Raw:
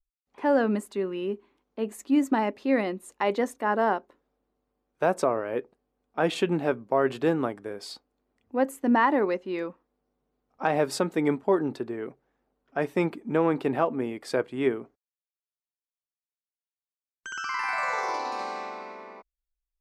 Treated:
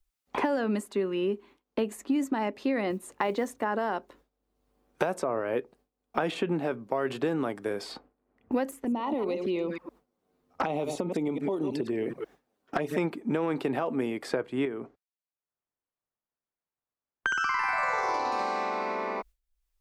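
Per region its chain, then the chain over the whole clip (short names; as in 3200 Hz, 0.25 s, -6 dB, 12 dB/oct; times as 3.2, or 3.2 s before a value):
2.9–3.64 bell 98 Hz +11.5 dB 0.7 oct + companded quantiser 8-bit
8.71–12.98 reverse delay 0.107 s, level -10.5 dB + compressor 4:1, threshold -32 dBFS + envelope flanger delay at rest 11.9 ms, full sweep at -32 dBFS
14.65–17.41 compressor 2:1, threshold -36 dBFS + low-pass opened by the level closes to 1300 Hz, open at -33.5 dBFS
whole clip: gate with hold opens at -54 dBFS; limiter -18 dBFS; three-band squash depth 100%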